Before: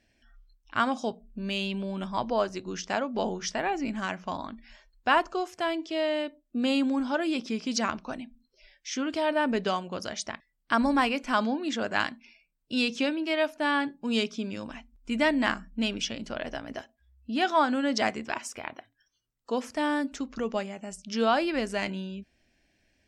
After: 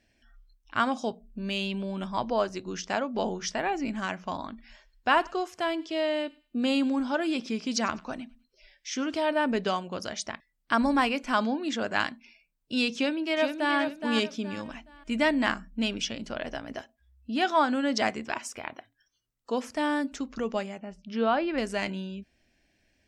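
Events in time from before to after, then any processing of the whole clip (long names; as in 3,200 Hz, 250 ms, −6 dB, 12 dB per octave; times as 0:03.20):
0:04.49–0:09.23: feedback echo with a high-pass in the loop 100 ms, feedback 30%, high-pass 1,200 Hz, level −21.5 dB
0:12.94–0:13.77: delay throw 420 ms, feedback 30%, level −6.5 dB
0:20.78–0:21.58: high-frequency loss of the air 280 metres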